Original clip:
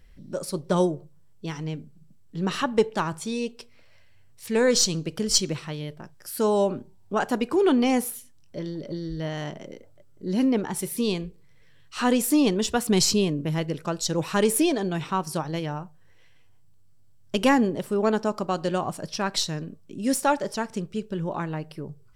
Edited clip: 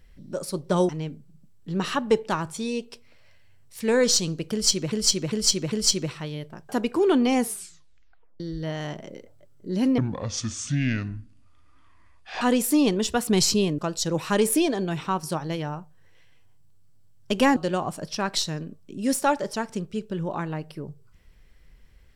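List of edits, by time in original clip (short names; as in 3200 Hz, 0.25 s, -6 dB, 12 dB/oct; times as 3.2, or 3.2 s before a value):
0.89–1.56 cut
5.19–5.59 loop, 4 plays
6.16–7.26 cut
7.98 tape stop 0.99 s
10.55–12.01 speed 60%
13.38–13.82 cut
17.6–18.57 cut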